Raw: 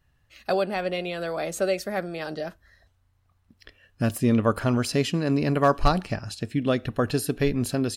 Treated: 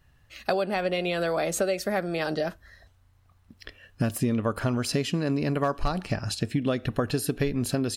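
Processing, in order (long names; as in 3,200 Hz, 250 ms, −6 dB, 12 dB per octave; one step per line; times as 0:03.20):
downward compressor 6 to 1, threshold −28 dBFS, peak gain reduction 13.5 dB
level +5.5 dB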